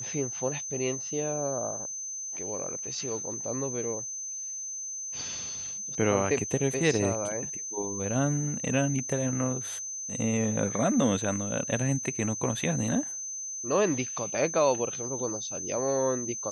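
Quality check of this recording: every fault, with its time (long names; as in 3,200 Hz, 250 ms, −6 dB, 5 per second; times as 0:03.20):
whistle 6,200 Hz −34 dBFS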